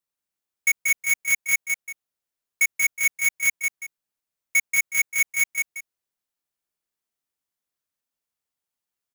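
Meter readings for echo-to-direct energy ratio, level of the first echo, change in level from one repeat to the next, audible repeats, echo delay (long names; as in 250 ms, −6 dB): −4.0 dB, −4.5 dB, −11.5 dB, 2, 184 ms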